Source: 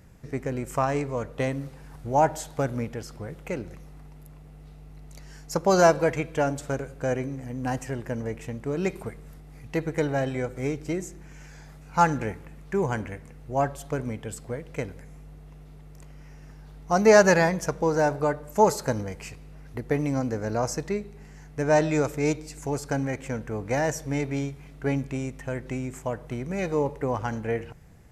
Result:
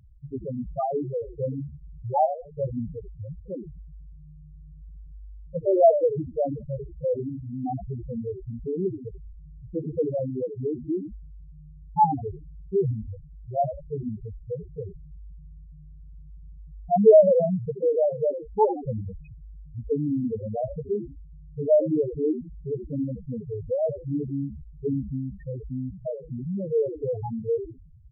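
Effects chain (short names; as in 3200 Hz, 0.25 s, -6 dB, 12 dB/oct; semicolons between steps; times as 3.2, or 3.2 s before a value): low-pass opened by the level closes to 2400 Hz, open at -18 dBFS; frequency-shifting echo 80 ms, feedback 37%, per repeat -68 Hz, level -9.5 dB; loudest bins only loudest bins 2; gain +4.5 dB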